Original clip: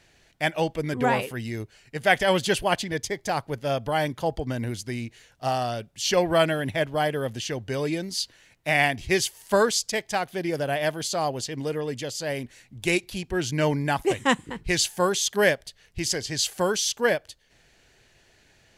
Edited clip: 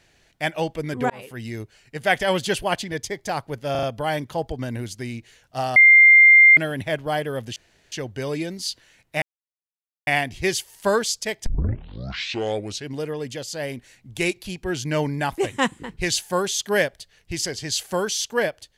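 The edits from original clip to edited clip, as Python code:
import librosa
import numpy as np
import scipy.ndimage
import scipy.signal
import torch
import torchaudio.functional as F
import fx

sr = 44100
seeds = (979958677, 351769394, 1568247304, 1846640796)

y = fx.edit(x, sr, fx.fade_in_span(start_s=1.1, length_s=0.35),
    fx.stutter(start_s=3.71, slice_s=0.04, count=4),
    fx.bleep(start_s=5.64, length_s=0.81, hz=2100.0, db=-7.5),
    fx.insert_room_tone(at_s=7.44, length_s=0.36),
    fx.insert_silence(at_s=8.74, length_s=0.85),
    fx.tape_start(start_s=10.13, length_s=1.48), tone=tone)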